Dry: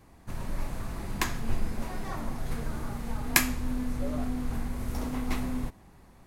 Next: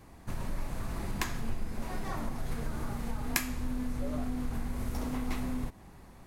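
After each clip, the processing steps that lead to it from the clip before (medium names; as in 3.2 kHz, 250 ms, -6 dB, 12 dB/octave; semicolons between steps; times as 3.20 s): compression 2.5:1, threshold -34 dBFS, peak gain reduction 12 dB; trim +2.5 dB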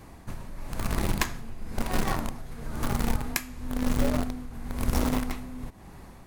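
tremolo 1 Hz, depth 75%; in parallel at -7 dB: bit crusher 5-bit; on the sum: trim +6.5 dB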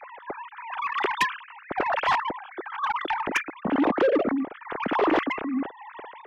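formants replaced by sine waves; saturation -20.5 dBFS, distortion -11 dB; trim +4 dB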